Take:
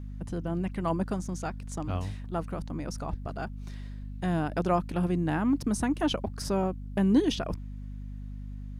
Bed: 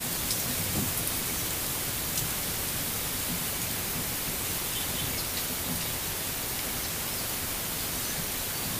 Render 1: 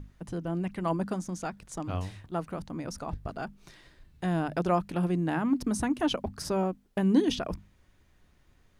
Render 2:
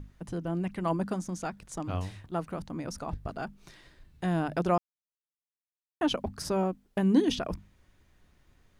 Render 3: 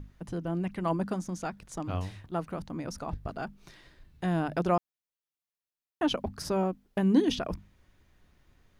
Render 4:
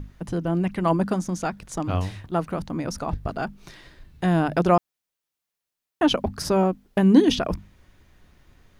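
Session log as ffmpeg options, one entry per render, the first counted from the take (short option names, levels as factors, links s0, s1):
-af "bandreject=f=50:t=h:w=6,bandreject=f=100:t=h:w=6,bandreject=f=150:t=h:w=6,bandreject=f=200:t=h:w=6,bandreject=f=250:t=h:w=6"
-filter_complex "[0:a]asplit=3[s0][s1][s2];[s0]atrim=end=4.78,asetpts=PTS-STARTPTS,afade=t=out:st=4.776:d=0.004:c=hsin[s3];[s1]atrim=start=4.78:end=6.01,asetpts=PTS-STARTPTS,volume=0[s4];[s2]atrim=start=6.01,asetpts=PTS-STARTPTS,afade=t=in:d=0.004:c=hsin[s5];[s3][s4][s5]concat=n=3:v=0:a=1"
-af "equalizer=f=8300:t=o:w=0.61:g=-3.5"
-af "volume=2.51"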